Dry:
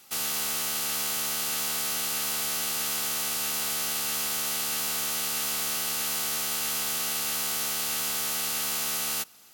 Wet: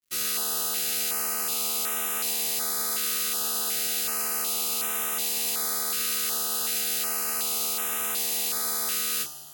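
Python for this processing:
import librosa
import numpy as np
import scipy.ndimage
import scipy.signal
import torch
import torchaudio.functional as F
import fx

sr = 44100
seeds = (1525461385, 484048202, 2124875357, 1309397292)

y = fx.rev_double_slope(x, sr, seeds[0], early_s=0.26, late_s=3.2, knee_db=-17, drr_db=-1.0)
y = np.sign(y) * np.maximum(np.abs(y) - 10.0 ** (-44.0 / 20.0), 0.0)
y = fx.filter_held_notch(y, sr, hz=2.7, low_hz=840.0, high_hz=4500.0)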